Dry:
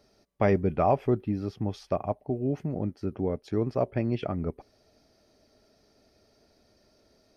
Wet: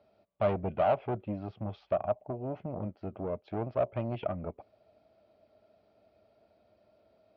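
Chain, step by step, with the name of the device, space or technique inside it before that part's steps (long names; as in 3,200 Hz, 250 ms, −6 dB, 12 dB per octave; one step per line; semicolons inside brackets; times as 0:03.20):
guitar amplifier (tube saturation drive 24 dB, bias 0.55; bass and treble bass +2 dB, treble −6 dB; loudspeaker in its box 100–3,500 Hz, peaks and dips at 150 Hz −8 dB, 260 Hz −7 dB, 400 Hz −6 dB, 640 Hz +8 dB, 1,800 Hz −8 dB)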